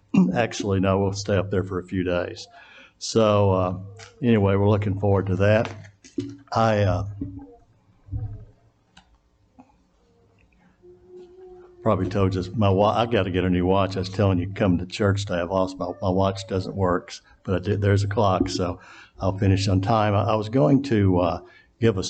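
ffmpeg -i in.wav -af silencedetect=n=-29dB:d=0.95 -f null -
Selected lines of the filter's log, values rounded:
silence_start: 8.31
silence_end: 11.86 | silence_duration: 3.54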